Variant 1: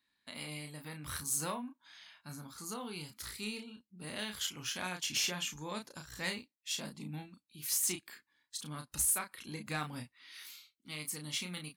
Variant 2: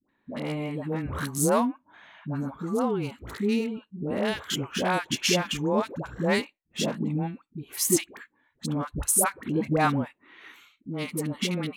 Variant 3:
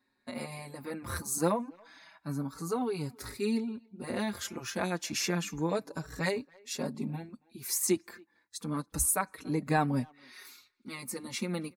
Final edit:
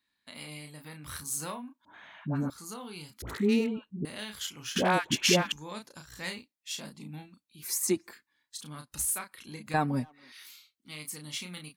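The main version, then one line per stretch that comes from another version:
1
1.85–2.5 from 2
3.22–4.05 from 2
4.76–5.52 from 2
7.63–8.13 from 3
9.74–10.32 from 3

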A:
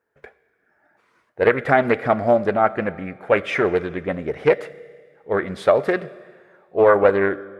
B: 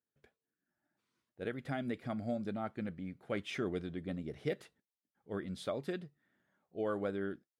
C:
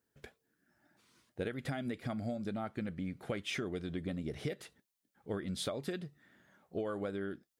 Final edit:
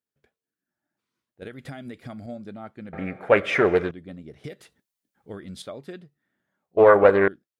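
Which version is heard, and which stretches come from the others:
B
1.42–2.26 from C
2.93–3.91 from A
4.44–5.62 from C
6.77–7.28 from A

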